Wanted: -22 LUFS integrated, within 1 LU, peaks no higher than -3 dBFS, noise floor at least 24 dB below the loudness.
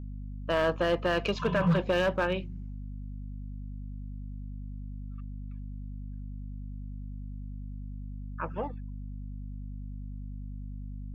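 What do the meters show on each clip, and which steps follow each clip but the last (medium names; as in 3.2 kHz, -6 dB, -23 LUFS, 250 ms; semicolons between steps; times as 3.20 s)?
clipped samples 0.5%; clipping level -19.5 dBFS; hum 50 Hz; highest harmonic 250 Hz; hum level -36 dBFS; loudness -34.0 LUFS; peak level -19.5 dBFS; loudness target -22.0 LUFS
-> clip repair -19.5 dBFS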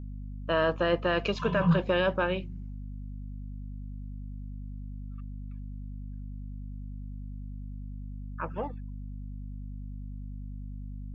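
clipped samples 0.0%; hum 50 Hz; highest harmonic 250 Hz; hum level -36 dBFS
-> hum notches 50/100/150/200/250 Hz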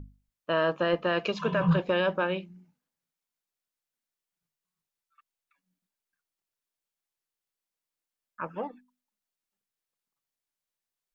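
hum not found; loudness -28.0 LUFS; peak level -13.5 dBFS; loudness target -22.0 LUFS
-> trim +6 dB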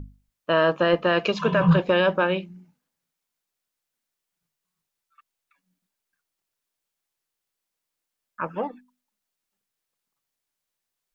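loudness -22.0 LUFS; peak level -7.5 dBFS; noise floor -84 dBFS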